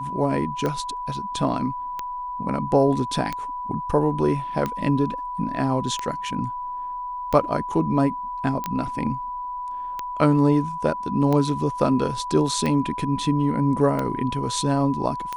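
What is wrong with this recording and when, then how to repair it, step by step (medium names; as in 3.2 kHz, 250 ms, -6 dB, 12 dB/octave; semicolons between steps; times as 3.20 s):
tick 45 rpm -13 dBFS
whine 990 Hz -28 dBFS
8.64 s: pop -16 dBFS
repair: de-click; band-stop 990 Hz, Q 30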